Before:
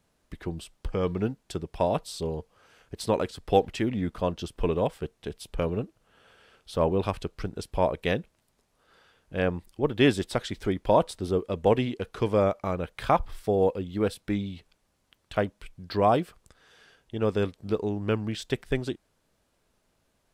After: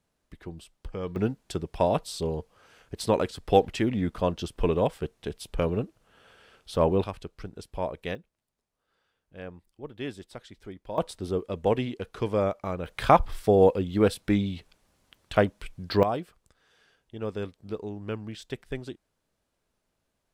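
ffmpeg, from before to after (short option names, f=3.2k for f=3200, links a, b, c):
-af "asetnsamples=n=441:p=0,asendcmd='1.16 volume volume 1.5dB;7.04 volume volume -6.5dB;8.15 volume volume -14.5dB;10.98 volume volume -2.5dB;12.86 volume volume 4.5dB;16.03 volume volume -7dB',volume=-6.5dB"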